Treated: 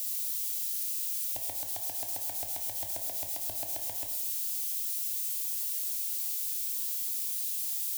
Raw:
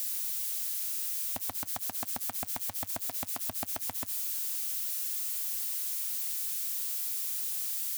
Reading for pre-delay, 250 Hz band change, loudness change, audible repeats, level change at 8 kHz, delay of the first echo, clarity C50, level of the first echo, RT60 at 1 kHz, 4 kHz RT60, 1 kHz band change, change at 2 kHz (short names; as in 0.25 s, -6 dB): 12 ms, -8.5 dB, +0.5 dB, none, +0.5 dB, none, 6.5 dB, none, 0.95 s, 0.85 s, -4.0 dB, -5.0 dB